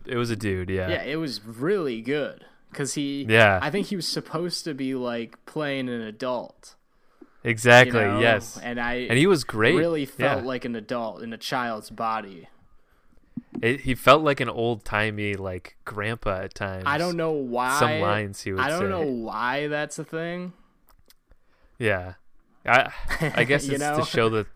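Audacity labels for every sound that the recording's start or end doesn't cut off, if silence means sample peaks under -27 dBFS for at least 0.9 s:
7.450000	12.210000	sound
13.370000	20.460000	sound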